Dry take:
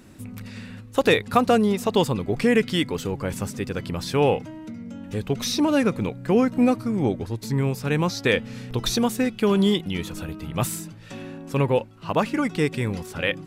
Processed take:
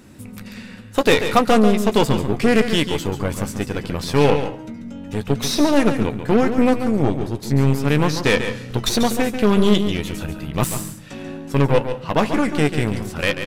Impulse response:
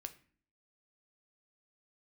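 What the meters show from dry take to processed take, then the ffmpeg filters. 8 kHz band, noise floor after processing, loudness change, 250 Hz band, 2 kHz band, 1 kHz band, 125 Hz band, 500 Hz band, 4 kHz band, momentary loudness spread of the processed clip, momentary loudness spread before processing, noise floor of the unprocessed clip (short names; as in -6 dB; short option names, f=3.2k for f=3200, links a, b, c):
+4.5 dB, -37 dBFS, +4.0 dB, +4.0 dB, +4.0 dB, +4.5 dB, +5.0 dB, +4.0 dB, +4.5 dB, 13 LU, 17 LU, -42 dBFS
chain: -filter_complex "[0:a]asplit=2[a][b];[b]adelay=14,volume=-10dB[c];[a][c]amix=inputs=2:normalize=0,aeval=exprs='0.562*(cos(1*acos(clip(val(0)/0.562,-1,1)))-cos(1*PI/2))+0.0562*(cos(8*acos(clip(val(0)/0.562,-1,1)))-cos(8*PI/2))':c=same,asplit=2[d][e];[1:a]atrim=start_sample=2205,asetrate=30429,aresample=44100,adelay=140[f];[e][f]afir=irnorm=-1:irlink=0,volume=-6dB[g];[d][g]amix=inputs=2:normalize=0,volume=2.5dB"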